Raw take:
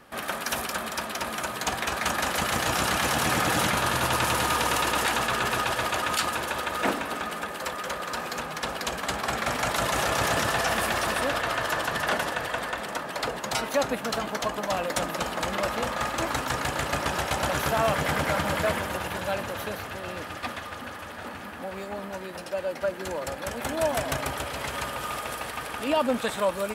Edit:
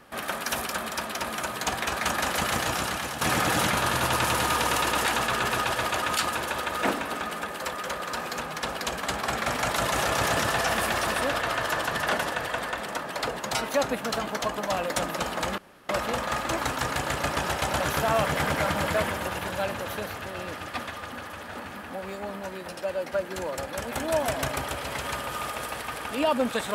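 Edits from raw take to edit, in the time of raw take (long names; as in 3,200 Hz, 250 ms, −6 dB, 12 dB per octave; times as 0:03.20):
0:02.52–0:03.21: fade out, to −10.5 dB
0:15.58: splice in room tone 0.31 s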